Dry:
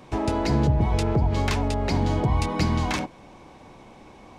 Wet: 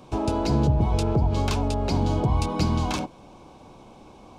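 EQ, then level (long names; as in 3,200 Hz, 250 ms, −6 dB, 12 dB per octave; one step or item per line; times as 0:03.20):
parametric band 1,900 Hz −14 dB 0.4 octaves
0.0 dB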